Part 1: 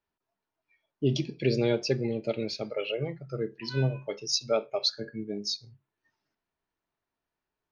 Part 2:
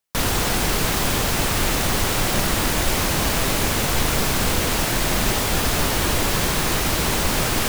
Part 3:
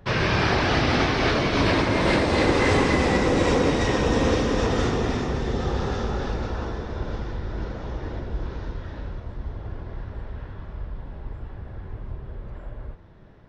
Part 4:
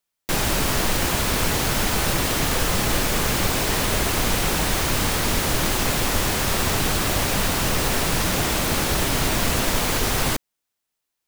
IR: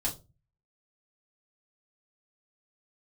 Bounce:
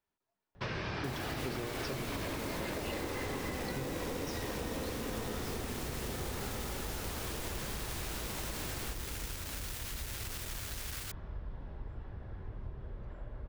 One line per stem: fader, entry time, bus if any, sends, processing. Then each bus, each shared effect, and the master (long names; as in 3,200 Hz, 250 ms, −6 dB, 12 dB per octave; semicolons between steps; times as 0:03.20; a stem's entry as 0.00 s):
−2.5 dB, 0.00 s, no send, every ending faded ahead of time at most 110 dB per second
−17.0 dB, 1.25 s, no send, no processing
−8.0 dB, 0.55 s, no send, no processing
−14.5 dB, 0.75 s, no send, high-pass filter 1,300 Hz 24 dB per octave; brickwall limiter −17 dBFS, peak gain reduction 5.5 dB; bit reduction 4 bits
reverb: not used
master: downward compressor 6 to 1, threshold −35 dBFS, peak gain reduction 13.5 dB